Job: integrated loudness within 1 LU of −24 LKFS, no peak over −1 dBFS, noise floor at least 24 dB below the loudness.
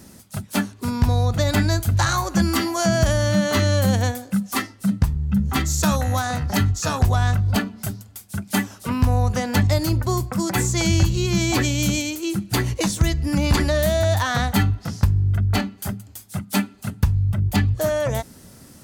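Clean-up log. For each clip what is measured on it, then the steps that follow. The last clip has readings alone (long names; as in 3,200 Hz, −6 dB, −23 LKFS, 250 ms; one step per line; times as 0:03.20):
integrated loudness −21.5 LKFS; sample peak −7.0 dBFS; target loudness −24.0 LKFS
→ level −2.5 dB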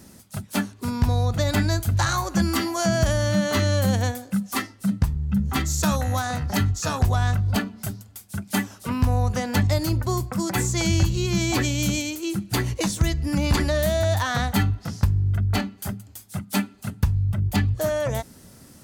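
integrated loudness −24.0 LKFS; sample peak −9.5 dBFS; background noise floor −49 dBFS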